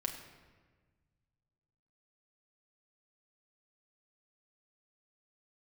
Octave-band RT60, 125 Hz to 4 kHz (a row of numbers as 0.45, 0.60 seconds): 2.7, 1.9, 1.5, 1.3, 1.3, 0.95 seconds